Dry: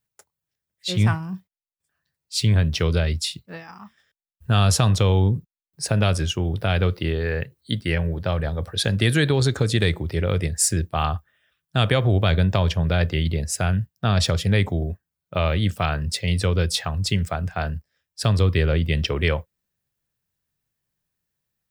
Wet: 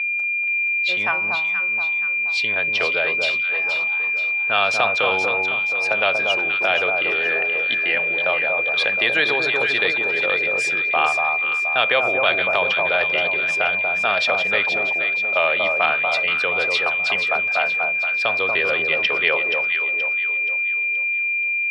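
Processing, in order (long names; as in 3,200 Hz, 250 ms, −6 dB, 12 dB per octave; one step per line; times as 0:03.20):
steady tone 2,400 Hz −25 dBFS
Chebyshev band-pass filter 630–3,100 Hz, order 2
delay that swaps between a low-pass and a high-pass 238 ms, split 1,200 Hz, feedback 65%, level −3 dB
level +5 dB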